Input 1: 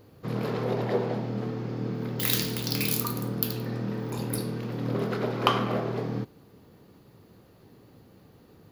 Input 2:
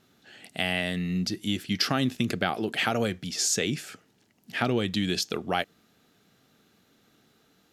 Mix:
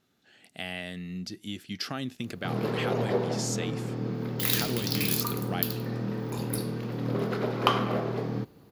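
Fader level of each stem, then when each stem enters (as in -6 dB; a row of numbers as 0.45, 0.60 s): -0.5, -8.5 dB; 2.20, 0.00 s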